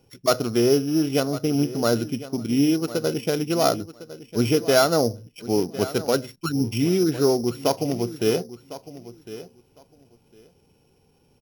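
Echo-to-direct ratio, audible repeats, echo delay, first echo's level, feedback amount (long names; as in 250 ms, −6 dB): −15.5 dB, 2, 1,055 ms, −15.5 dB, 17%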